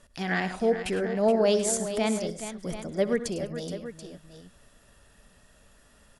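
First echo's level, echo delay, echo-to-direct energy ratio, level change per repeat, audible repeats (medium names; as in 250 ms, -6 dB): -17.5 dB, 65 ms, -7.0 dB, no regular repeats, 4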